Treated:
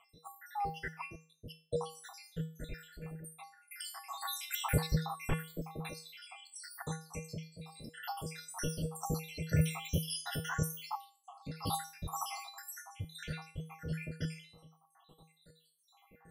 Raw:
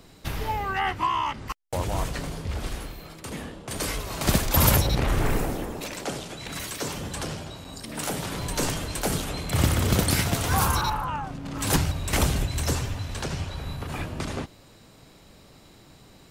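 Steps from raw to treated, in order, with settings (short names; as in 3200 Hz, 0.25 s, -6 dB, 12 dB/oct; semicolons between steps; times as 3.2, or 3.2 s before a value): random spectral dropouts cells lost 85%; notch 6700 Hz, Q 5.3; resonator 160 Hz, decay 0.38 s, harmonics odd, mix 90%; gain +10 dB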